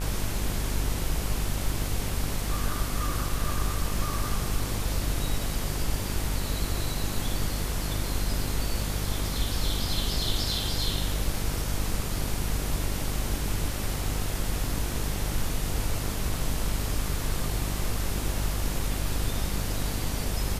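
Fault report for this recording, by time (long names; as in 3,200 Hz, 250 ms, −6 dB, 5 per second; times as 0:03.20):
mains buzz 50 Hz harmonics 31 −32 dBFS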